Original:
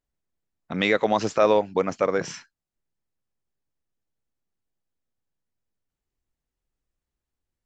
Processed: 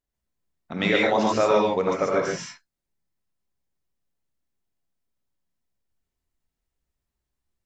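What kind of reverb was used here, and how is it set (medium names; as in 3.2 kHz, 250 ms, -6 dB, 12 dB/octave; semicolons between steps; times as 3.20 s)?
gated-style reverb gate 170 ms rising, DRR -3 dB; trim -3 dB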